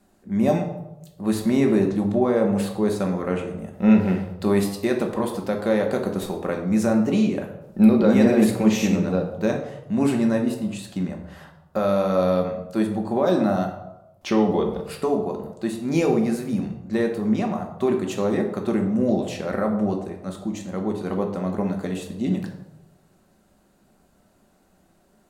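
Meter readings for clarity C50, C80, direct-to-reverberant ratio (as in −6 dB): 7.0 dB, 10.0 dB, 2.0 dB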